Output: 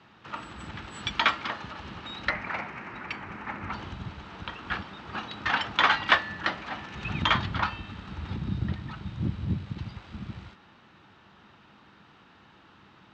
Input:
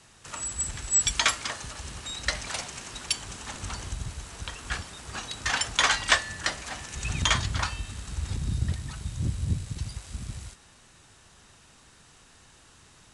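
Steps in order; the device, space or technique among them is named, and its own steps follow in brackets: guitar cabinet (cabinet simulation 95–3600 Hz, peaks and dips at 200 Hz +8 dB, 320 Hz +6 dB, 880 Hz +5 dB, 1.3 kHz +5 dB); 2.29–3.72 s: resonant high shelf 2.7 kHz -6.5 dB, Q 3

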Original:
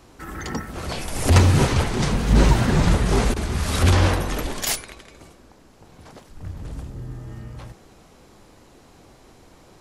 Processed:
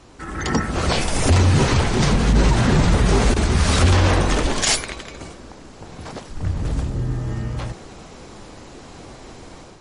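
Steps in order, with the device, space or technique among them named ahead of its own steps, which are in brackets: low-pass 10 kHz 12 dB/octave; low-bitrate web radio (level rider gain up to 8 dB; peak limiter -10 dBFS, peak gain reduction 9 dB; trim +3 dB; MP3 40 kbps 32 kHz)

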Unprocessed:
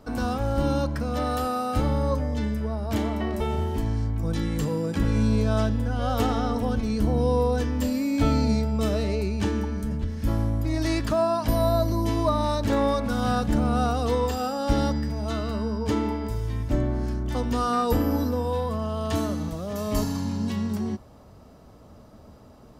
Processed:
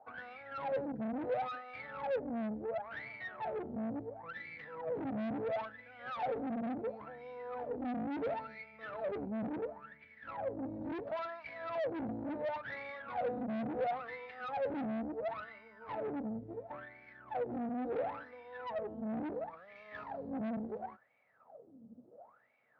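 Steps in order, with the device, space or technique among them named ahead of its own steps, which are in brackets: wah-wah guitar rig (wah-wah 0.72 Hz 220–2300 Hz, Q 19; valve stage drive 47 dB, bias 0.55; cabinet simulation 84–3600 Hz, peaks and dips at 130 Hz +7 dB, 360 Hz -4 dB, 510 Hz +7 dB, 730 Hz +5 dB, 1.1 kHz -5 dB, 3 kHz -5 dB); trim +10.5 dB

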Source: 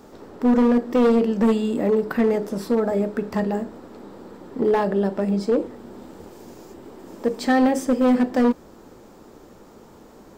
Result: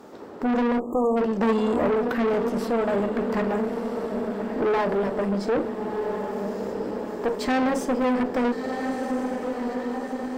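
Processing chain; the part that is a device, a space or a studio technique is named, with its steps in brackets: high-pass 150 Hz 6 dB/octave; echo that smears into a reverb 1324 ms, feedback 59%, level -9 dB; tube preamp driven hard (valve stage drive 24 dB, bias 0.55; bass shelf 160 Hz -6 dB; treble shelf 3.8 kHz -7 dB); 0.79–1.17 s: spectral selection erased 1.3–6.5 kHz; 1.41–1.87 s: peaking EQ 790 Hz +4.5 dB 2 oct; trim +5.5 dB

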